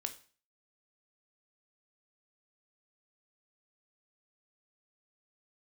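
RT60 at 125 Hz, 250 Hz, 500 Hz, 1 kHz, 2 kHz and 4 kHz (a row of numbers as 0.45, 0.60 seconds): 0.45, 0.45, 0.40, 0.40, 0.40, 0.40 seconds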